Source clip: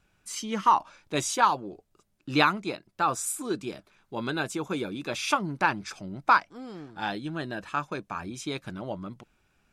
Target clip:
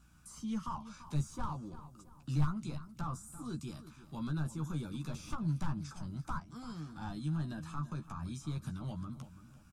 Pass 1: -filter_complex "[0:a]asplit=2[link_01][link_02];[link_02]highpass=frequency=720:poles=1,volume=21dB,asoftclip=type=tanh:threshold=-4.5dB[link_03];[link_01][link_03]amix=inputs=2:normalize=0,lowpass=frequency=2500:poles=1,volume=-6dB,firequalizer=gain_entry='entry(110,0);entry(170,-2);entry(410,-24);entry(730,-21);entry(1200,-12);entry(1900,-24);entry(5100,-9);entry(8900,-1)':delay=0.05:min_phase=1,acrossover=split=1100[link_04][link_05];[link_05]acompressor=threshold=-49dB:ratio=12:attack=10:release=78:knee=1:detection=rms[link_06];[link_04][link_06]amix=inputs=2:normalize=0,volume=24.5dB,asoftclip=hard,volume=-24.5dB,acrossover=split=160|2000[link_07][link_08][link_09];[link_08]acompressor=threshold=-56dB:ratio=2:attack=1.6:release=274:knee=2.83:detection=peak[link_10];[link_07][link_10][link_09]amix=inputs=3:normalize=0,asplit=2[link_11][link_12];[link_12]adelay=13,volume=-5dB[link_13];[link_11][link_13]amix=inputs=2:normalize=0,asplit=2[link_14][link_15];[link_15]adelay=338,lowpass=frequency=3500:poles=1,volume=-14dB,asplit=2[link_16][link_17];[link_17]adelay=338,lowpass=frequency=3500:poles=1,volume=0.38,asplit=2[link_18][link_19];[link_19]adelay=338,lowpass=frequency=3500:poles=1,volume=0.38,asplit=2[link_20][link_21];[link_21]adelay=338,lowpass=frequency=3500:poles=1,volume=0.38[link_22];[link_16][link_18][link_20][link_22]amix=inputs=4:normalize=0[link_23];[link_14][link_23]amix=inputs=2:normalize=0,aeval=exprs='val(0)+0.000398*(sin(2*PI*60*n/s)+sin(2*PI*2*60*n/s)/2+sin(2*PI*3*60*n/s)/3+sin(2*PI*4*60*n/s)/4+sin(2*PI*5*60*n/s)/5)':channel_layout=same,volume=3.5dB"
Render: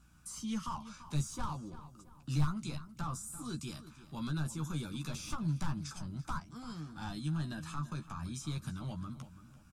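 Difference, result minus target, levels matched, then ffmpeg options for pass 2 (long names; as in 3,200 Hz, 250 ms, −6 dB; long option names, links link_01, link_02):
downward compressor: peak gain reduction −7.5 dB
-filter_complex "[0:a]asplit=2[link_01][link_02];[link_02]highpass=frequency=720:poles=1,volume=21dB,asoftclip=type=tanh:threshold=-4.5dB[link_03];[link_01][link_03]amix=inputs=2:normalize=0,lowpass=frequency=2500:poles=1,volume=-6dB,firequalizer=gain_entry='entry(110,0);entry(170,-2);entry(410,-24);entry(730,-21);entry(1200,-12);entry(1900,-24);entry(5100,-9);entry(8900,-1)':delay=0.05:min_phase=1,acrossover=split=1100[link_04][link_05];[link_05]acompressor=threshold=-57dB:ratio=12:attack=10:release=78:knee=1:detection=rms[link_06];[link_04][link_06]amix=inputs=2:normalize=0,volume=24.5dB,asoftclip=hard,volume=-24.5dB,acrossover=split=160|2000[link_07][link_08][link_09];[link_08]acompressor=threshold=-56dB:ratio=2:attack=1.6:release=274:knee=2.83:detection=peak[link_10];[link_07][link_10][link_09]amix=inputs=3:normalize=0,asplit=2[link_11][link_12];[link_12]adelay=13,volume=-5dB[link_13];[link_11][link_13]amix=inputs=2:normalize=0,asplit=2[link_14][link_15];[link_15]adelay=338,lowpass=frequency=3500:poles=1,volume=-14dB,asplit=2[link_16][link_17];[link_17]adelay=338,lowpass=frequency=3500:poles=1,volume=0.38,asplit=2[link_18][link_19];[link_19]adelay=338,lowpass=frequency=3500:poles=1,volume=0.38,asplit=2[link_20][link_21];[link_21]adelay=338,lowpass=frequency=3500:poles=1,volume=0.38[link_22];[link_16][link_18][link_20][link_22]amix=inputs=4:normalize=0[link_23];[link_14][link_23]amix=inputs=2:normalize=0,aeval=exprs='val(0)+0.000398*(sin(2*PI*60*n/s)+sin(2*PI*2*60*n/s)/2+sin(2*PI*3*60*n/s)/3+sin(2*PI*4*60*n/s)/4+sin(2*PI*5*60*n/s)/5)':channel_layout=same,volume=3.5dB"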